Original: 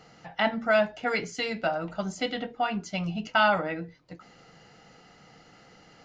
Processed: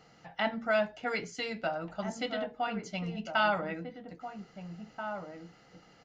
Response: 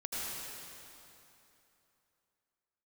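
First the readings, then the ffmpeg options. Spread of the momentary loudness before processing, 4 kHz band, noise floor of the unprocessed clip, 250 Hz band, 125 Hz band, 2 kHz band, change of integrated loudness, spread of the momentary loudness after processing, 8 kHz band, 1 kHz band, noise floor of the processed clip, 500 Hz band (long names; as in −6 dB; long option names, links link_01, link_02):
11 LU, −5.5 dB, −56 dBFS, −5.0 dB, −5.0 dB, −5.5 dB, −6.0 dB, 16 LU, can't be measured, −5.0 dB, −60 dBFS, −5.0 dB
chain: -filter_complex "[0:a]asplit=2[link_01][link_02];[link_02]adelay=1633,volume=-7dB,highshelf=frequency=4000:gain=-36.7[link_03];[link_01][link_03]amix=inputs=2:normalize=0,volume=-5.5dB"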